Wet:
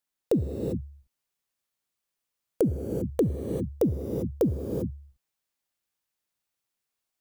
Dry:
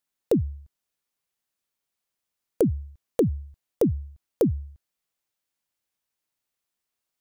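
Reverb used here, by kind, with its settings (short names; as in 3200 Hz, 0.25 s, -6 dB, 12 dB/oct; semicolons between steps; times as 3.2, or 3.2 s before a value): non-linear reverb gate 0.42 s rising, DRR 3 dB; gain -2.5 dB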